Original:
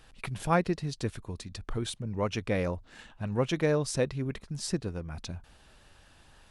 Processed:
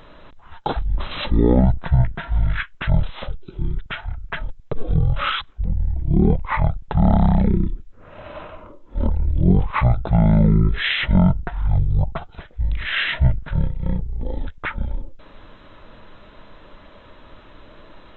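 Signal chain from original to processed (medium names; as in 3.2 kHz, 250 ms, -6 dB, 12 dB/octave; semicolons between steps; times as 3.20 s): octave divider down 2 oct, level -3 dB; wide varispeed 0.358×; loudness maximiser +18.5 dB; trim -5 dB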